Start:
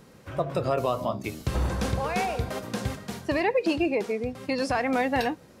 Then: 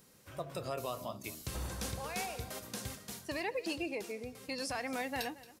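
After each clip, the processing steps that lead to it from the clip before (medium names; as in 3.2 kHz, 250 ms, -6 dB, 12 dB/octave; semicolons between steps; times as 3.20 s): pre-emphasis filter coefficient 0.8; delay 226 ms -18.5 dB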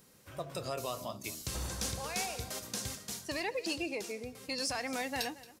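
dynamic bell 6.1 kHz, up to +7 dB, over -58 dBFS, Q 0.81; in parallel at -10.5 dB: overload inside the chain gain 32.5 dB; on the sum: trim -1.5 dB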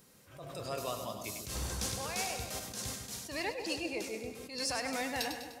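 on a send: two-band feedback delay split 850 Hz, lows 148 ms, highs 100 ms, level -7.5 dB; on the sum: attacks held to a fixed rise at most 100 dB/s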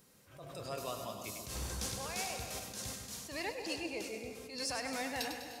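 gated-style reverb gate 370 ms rising, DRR 10.5 dB; trim -3 dB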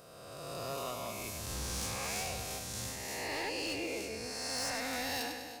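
reverse spectral sustain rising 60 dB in 1.96 s; hard clipper -30.5 dBFS, distortion -16 dB; trim -1.5 dB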